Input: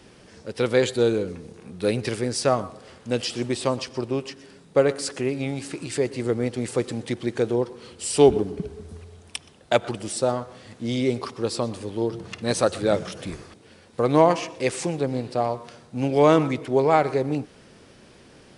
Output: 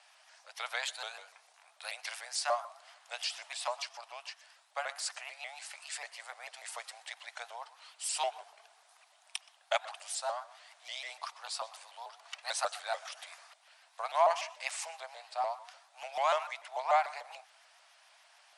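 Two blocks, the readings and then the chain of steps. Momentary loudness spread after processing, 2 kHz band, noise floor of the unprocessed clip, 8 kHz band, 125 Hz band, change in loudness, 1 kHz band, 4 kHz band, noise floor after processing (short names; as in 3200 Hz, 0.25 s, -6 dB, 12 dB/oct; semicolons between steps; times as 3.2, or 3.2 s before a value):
19 LU, -6.5 dB, -52 dBFS, -7.0 dB, under -40 dB, -12.5 dB, -6.5 dB, -6.0 dB, -65 dBFS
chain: Chebyshev high-pass 660 Hz, order 6; shaped vibrato saw up 6.8 Hz, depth 160 cents; gain -6 dB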